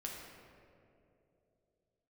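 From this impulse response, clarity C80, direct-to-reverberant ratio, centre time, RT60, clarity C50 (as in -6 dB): 2.5 dB, -2.5 dB, 97 ms, 2.9 s, 1.0 dB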